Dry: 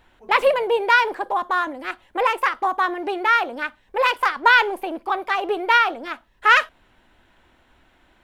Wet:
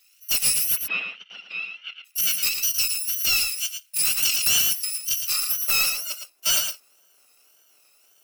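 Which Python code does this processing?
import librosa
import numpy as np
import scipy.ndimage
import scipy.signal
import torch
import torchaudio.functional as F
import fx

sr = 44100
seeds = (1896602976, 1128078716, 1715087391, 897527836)

p1 = fx.bit_reversed(x, sr, seeds[0], block=128)
p2 = fx.wow_flutter(p1, sr, seeds[1], rate_hz=2.1, depth_cents=120.0)
p3 = fx.filter_sweep_highpass(p2, sr, from_hz=2300.0, to_hz=540.0, start_s=5.15, end_s=5.67, q=1.3)
p4 = 10.0 ** (-17.0 / 20.0) * np.tanh(p3 / 10.0 ** (-17.0 / 20.0))
p5 = fx.cheby1_bandpass(p4, sr, low_hz=180.0, high_hz=3300.0, order=4, at=(0.75, 2.04), fade=0.02)
p6 = p5 + fx.echo_single(p5, sr, ms=112, db=-7.0, dry=0)
y = fx.env_flatten(p6, sr, amount_pct=50, at=(4.17, 4.73))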